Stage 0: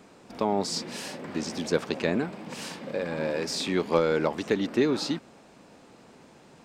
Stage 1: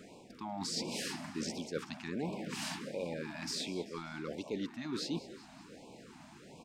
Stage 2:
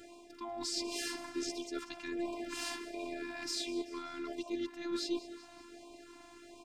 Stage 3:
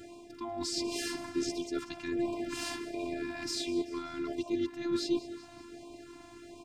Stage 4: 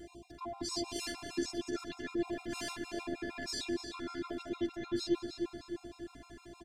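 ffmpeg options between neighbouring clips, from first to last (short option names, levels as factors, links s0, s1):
-filter_complex "[0:a]areverse,acompressor=threshold=0.02:ratio=10,areverse,asplit=6[s0][s1][s2][s3][s4][s5];[s1]adelay=192,afreqshift=47,volume=0.15[s6];[s2]adelay=384,afreqshift=94,volume=0.0841[s7];[s3]adelay=576,afreqshift=141,volume=0.0468[s8];[s4]adelay=768,afreqshift=188,volume=0.0263[s9];[s5]adelay=960,afreqshift=235,volume=0.0148[s10];[s0][s6][s7][s8][s9][s10]amix=inputs=6:normalize=0,afftfilt=real='re*(1-between(b*sr/1024,410*pow(1600/410,0.5+0.5*sin(2*PI*1.4*pts/sr))/1.41,410*pow(1600/410,0.5+0.5*sin(2*PI*1.4*pts/sr))*1.41))':imag='im*(1-between(b*sr/1024,410*pow(1600/410,0.5+0.5*sin(2*PI*1.4*pts/sr))/1.41,410*pow(1600/410,0.5+0.5*sin(2*PI*1.4*pts/sr))*1.41))':win_size=1024:overlap=0.75"
-af "afftfilt=real='hypot(re,im)*cos(PI*b)':imag='0':win_size=512:overlap=0.75,volume=1.58"
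-af "equalizer=f=130:t=o:w=1.8:g=14,volume=1.19"
-filter_complex "[0:a]asplit=2[s0][s1];[s1]adelay=303,lowpass=f=3900:p=1,volume=0.562,asplit=2[s2][s3];[s3]adelay=303,lowpass=f=3900:p=1,volume=0.51,asplit=2[s4][s5];[s5]adelay=303,lowpass=f=3900:p=1,volume=0.51,asplit=2[s6][s7];[s7]adelay=303,lowpass=f=3900:p=1,volume=0.51,asplit=2[s8][s9];[s9]adelay=303,lowpass=f=3900:p=1,volume=0.51,asplit=2[s10][s11];[s11]adelay=303,lowpass=f=3900:p=1,volume=0.51[s12];[s0][s2][s4][s6][s8][s10][s12]amix=inputs=7:normalize=0,aeval=exprs='val(0)+0.00158*(sin(2*PI*60*n/s)+sin(2*PI*2*60*n/s)/2+sin(2*PI*3*60*n/s)/3+sin(2*PI*4*60*n/s)/4+sin(2*PI*5*60*n/s)/5)':c=same,afftfilt=real='re*gt(sin(2*PI*6.5*pts/sr)*(1-2*mod(floor(b*sr/1024/690),2)),0)':imag='im*gt(sin(2*PI*6.5*pts/sr)*(1-2*mod(floor(b*sr/1024/690),2)),0)':win_size=1024:overlap=0.75"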